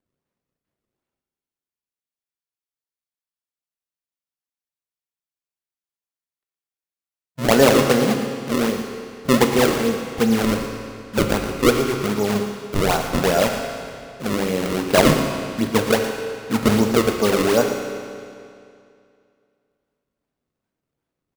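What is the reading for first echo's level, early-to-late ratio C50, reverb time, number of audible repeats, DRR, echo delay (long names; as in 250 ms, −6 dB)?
−12.0 dB, 4.5 dB, 2.4 s, 1, 3.0 dB, 116 ms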